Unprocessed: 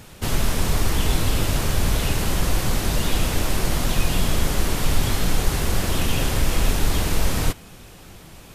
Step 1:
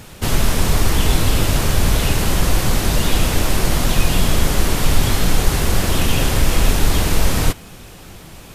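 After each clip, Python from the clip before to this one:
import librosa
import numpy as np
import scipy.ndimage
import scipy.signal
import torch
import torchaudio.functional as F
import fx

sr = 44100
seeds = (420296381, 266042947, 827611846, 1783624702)

y = fx.quant_dither(x, sr, seeds[0], bits=12, dither='none')
y = y * 10.0 ** (5.0 / 20.0)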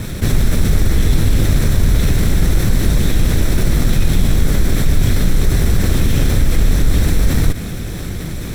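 y = fx.lower_of_two(x, sr, delay_ms=0.52)
y = fx.low_shelf(y, sr, hz=450.0, db=8.5)
y = fx.env_flatten(y, sr, amount_pct=50)
y = y * 10.0 ** (-7.0 / 20.0)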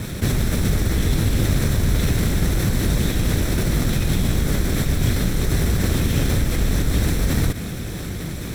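y = fx.highpass(x, sr, hz=61.0, slope=6)
y = y * 10.0 ** (-2.5 / 20.0)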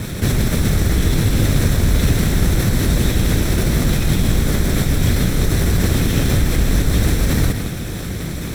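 y = x + 10.0 ** (-8.5 / 20.0) * np.pad(x, (int(162 * sr / 1000.0), 0))[:len(x)]
y = y * 10.0 ** (3.0 / 20.0)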